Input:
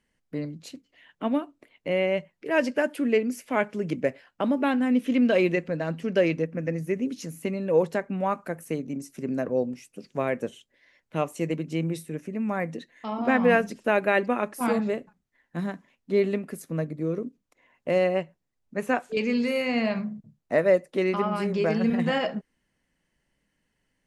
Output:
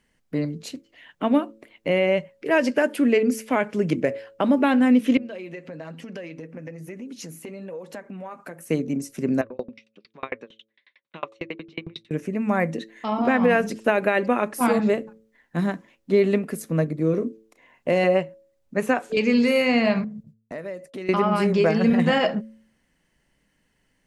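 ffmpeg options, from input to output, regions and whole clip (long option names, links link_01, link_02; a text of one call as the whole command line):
ffmpeg -i in.wav -filter_complex "[0:a]asettb=1/sr,asplit=3[link_01][link_02][link_03];[link_01]atrim=end=5.174[link_04];[link_02]atrim=start=5.17:end=8.7,asetpts=PTS-STARTPTS,afade=type=in:duration=0.004:curve=qsin,afade=type=out:start_time=3.526:duration=0.004:curve=qsin,flanger=delay=3.5:depth=4.2:regen=-44:speed=1.1:shape=sinusoidal,acompressor=threshold=-37dB:ratio=16:attack=3.2:release=140:knee=1:detection=peak,lowshelf=frequency=120:gain=-10[link_05];[link_03]atrim=start=8.696[link_06];[link_04][link_05]acrossfade=duration=0.004:curve1=hsin:curve2=qsin[link_07];[link_07][link_06]acrossfade=duration=0.004:curve1=qsin:curve2=hsin,asettb=1/sr,asplit=3[link_08][link_09][link_10];[link_08]atrim=end=9.414[link_11];[link_09]atrim=start=9.41:end=12.11,asetpts=PTS-STARTPTS,afade=type=in:duration=0.004:curve=qsin,afade=type=out:start_time=2.696:duration=0.004:curve=qsin,highpass=270,equalizer=frequency=290:width_type=q:width=4:gain=-6,equalizer=frequency=470:width_type=q:width=4:gain=-6,equalizer=frequency=690:width_type=q:width=4:gain=-7,equalizer=frequency=1100:width_type=q:width=4:gain=5,equalizer=frequency=2300:width_type=q:width=4:gain=4,equalizer=frequency=3700:width_type=q:width=4:gain=9,lowpass=frequency=4200:width=0.5412,lowpass=frequency=4200:width=1.3066,aeval=exprs='val(0)*pow(10,-39*if(lt(mod(11*n/s,1),2*abs(11)/1000),1-mod(11*n/s,1)/(2*abs(11)/1000),(mod(11*n/s,1)-2*abs(11)/1000)/(1-2*abs(11)/1000))/20)':channel_layout=same[link_12];[link_10]atrim=start=12.106[link_13];[link_11][link_12]acrossfade=duration=0.004:curve1=hsin:curve2=qsin[link_14];[link_14][link_13]acrossfade=duration=0.004:curve1=qsin:curve2=hsin,asettb=1/sr,asplit=3[link_15][link_16][link_17];[link_15]atrim=end=17.104[link_18];[link_16]atrim=start=17.1:end=18.04,asetpts=PTS-STARTPTS,afade=type=in:duration=0.004:curve=qsin,afade=type=out:start_time=0.936:duration=0.004:curve=qsin,bandreject=frequency=1300:width=15,asplit=2[link_19][link_20];[link_20]adelay=34,volume=-10.5dB[link_21];[link_19][link_21]amix=inputs=2:normalize=0,atrim=end_sample=41454[link_22];[link_17]atrim=start=18.036[link_23];[link_18][link_22]acrossfade=duration=0.004:curve1=hsin:curve2=qsin[link_24];[link_24][link_23]acrossfade=duration=0.004:curve1=qsin:curve2=hsin,asettb=1/sr,asplit=3[link_25][link_26][link_27];[link_25]atrim=end=20.044[link_28];[link_26]atrim=start=20.04:end=21.09,asetpts=PTS-STARTPTS,afade=type=in:duration=0.004:curve=qsin,afade=type=out:start_time=1.046:duration=0.004:curve=qsin,agate=range=-33dB:threshold=-50dB:ratio=3:release=100:detection=peak,equalizer=frequency=720:width=0.36:gain=-4.5,acompressor=threshold=-39dB:ratio=4:attack=3.2:release=140:knee=1:detection=peak[link_29];[link_27]atrim=start=21.086[link_30];[link_28][link_29]acrossfade=duration=0.004:curve1=hsin:curve2=qsin[link_31];[link_31][link_30]acrossfade=duration=0.004:curve1=qsin:curve2=hsin,bandreject=frequency=110.5:width_type=h:width=4,bandreject=frequency=221:width_type=h:width=4,bandreject=frequency=331.5:width_type=h:width=4,bandreject=frequency=442:width_type=h:width=4,bandreject=frequency=552.5:width_type=h:width=4,alimiter=limit=-16dB:level=0:latency=1:release=100,volume=6.5dB" out.wav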